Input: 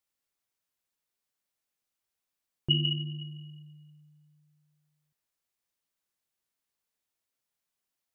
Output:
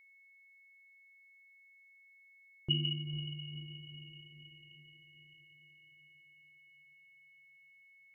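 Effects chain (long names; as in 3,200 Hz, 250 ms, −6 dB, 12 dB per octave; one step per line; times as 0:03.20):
feedback delay with all-pass diffusion 499 ms, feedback 58%, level −11 dB
steady tone 2,200 Hz −54 dBFS
level −6 dB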